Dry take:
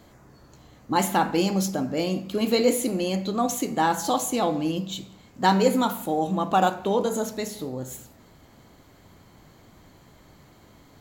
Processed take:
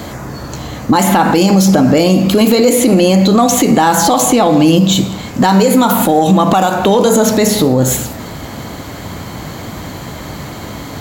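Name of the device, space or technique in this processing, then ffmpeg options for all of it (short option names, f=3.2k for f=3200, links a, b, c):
mastering chain: -filter_complex "[0:a]highpass=51,equalizer=f=380:t=o:w=0.26:g=-3,acrossover=split=2000|5100[a][b][c];[a]acompressor=threshold=-27dB:ratio=4[d];[b]acompressor=threshold=-46dB:ratio=4[e];[c]acompressor=threshold=-43dB:ratio=4[f];[d][e][f]amix=inputs=3:normalize=0,acompressor=threshold=-29dB:ratio=2,asoftclip=type=tanh:threshold=-19dB,alimiter=level_in=28dB:limit=-1dB:release=50:level=0:latency=1,volume=-1dB"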